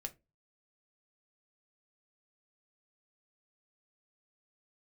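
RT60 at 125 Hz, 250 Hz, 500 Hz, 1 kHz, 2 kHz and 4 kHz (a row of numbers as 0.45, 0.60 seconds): 0.45, 0.35, 0.30, 0.20, 0.20, 0.15 seconds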